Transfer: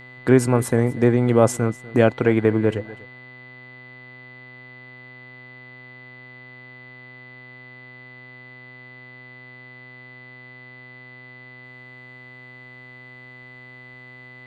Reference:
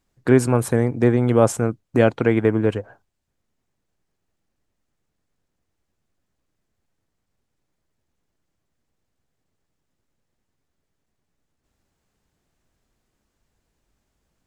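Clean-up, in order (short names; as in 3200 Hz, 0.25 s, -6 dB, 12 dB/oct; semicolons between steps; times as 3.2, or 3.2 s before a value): de-hum 126.1 Hz, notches 37; notch 2000 Hz, Q 30; inverse comb 0.245 s -19.5 dB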